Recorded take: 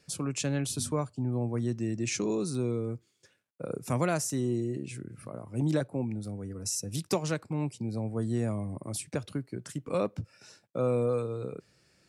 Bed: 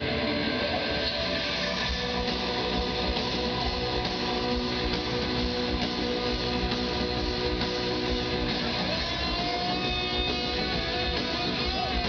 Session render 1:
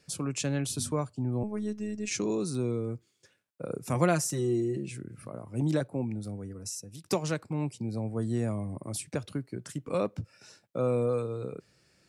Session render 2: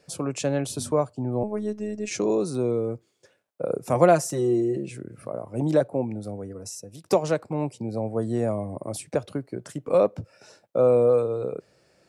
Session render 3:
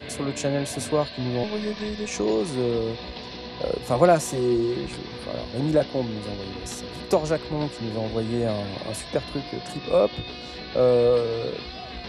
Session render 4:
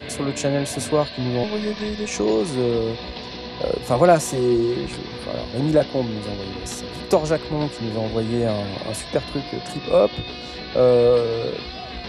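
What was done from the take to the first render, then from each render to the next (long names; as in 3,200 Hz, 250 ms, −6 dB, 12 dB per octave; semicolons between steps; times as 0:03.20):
0:01.43–0:02.11: phases set to zero 211 Hz; 0:03.94–0:04.90: comb filter 5.7 ms; 0:06.34–0:07.04: fade out, to −16 dB
parametric band 610 Hz +12 dB 1.6 octaves
mix in bed −8.5 dB
level +3.5 dB; brickwall limiter −3 dBFS, peak gain reduction 2.5 dB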